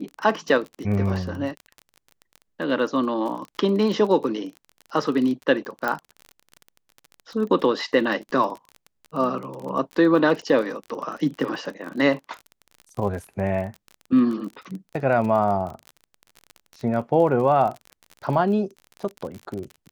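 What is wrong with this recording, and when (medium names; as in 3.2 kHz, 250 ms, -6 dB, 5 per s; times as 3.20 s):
crackle 33 per s -30 dBFS
5.88 s: pop -12 dBFS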